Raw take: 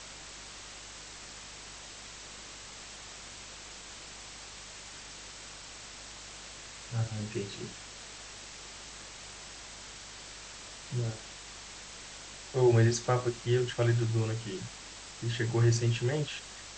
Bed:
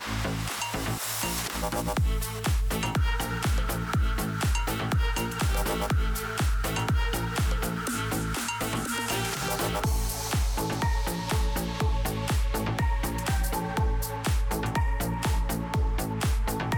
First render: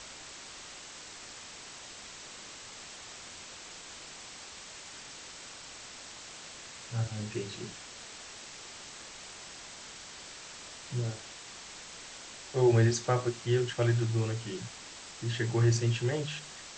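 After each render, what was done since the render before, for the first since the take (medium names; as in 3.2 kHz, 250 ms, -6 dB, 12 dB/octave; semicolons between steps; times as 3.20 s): de-hum 50 Hz, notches 4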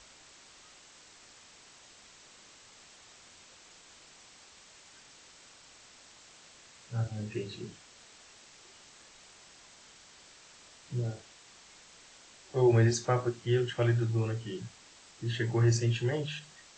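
noise print and reduce 9 dB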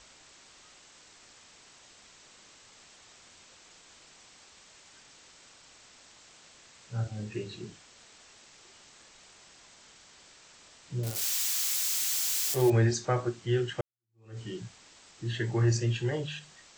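11.03–12.70 s: zero-crossing glitches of -23 dBFS; 13.81–14.39 s: fade in exponential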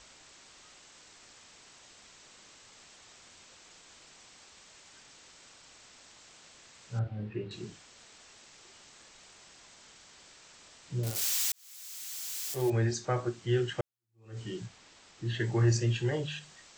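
6.99–7.51 s: distance through air 410 m; 11.52–13.66 s: fade in; 14.66–15.40 s: treble shelf 8.7 kHz -11 dB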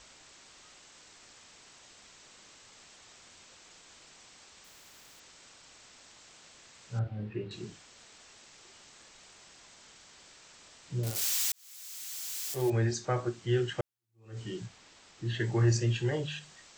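4.64–5.20 s: spectrum-flattening compressor 4:1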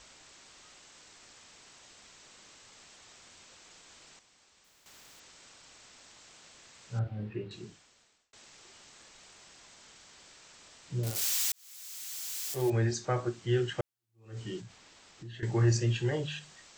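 4.19–4.86 s: gain -9 dB; 7.27–8.33 s: fade out; 14.60–15.43 s: compression 4:1, threshold -44 dBFS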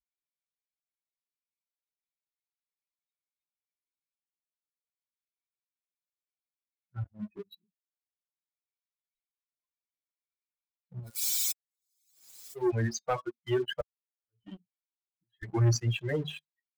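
expander on every frequency bin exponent 3; waveshaping leveller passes 2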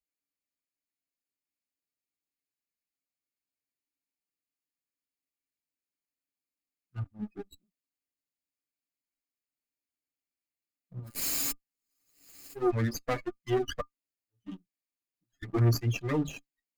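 comb filter that takes the minimum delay 0.42 ms; small resonant body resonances 280/1200 Hz, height 13 dB, ringing for 90 ms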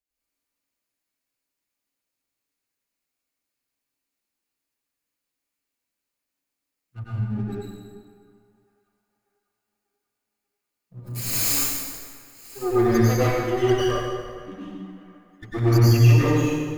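feedback echo behind a band-pass 591 ms, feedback 54%, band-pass 1.2 kHz, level -22 dB; plate-style reverb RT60 1.8 s, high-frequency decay 0.75×, pre-delay 85 ms, DRR -10 dB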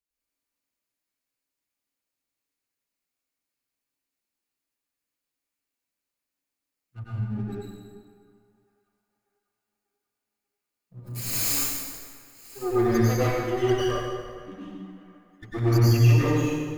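trim -3 dB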